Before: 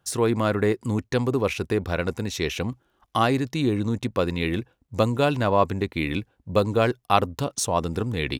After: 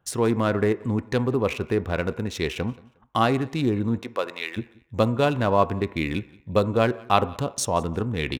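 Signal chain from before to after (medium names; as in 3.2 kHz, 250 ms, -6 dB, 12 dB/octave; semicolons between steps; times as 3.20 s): local Wiener filter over 9 samples; 3.99–4.56 s: high-pass 340 Hz -> 1.1 kHz 12 dB/octave; feedback delay 179 ms, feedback 26%, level -24 dB; on a send at -14 dB: reverberation RT60 0.60 s, pre-delay 3 ms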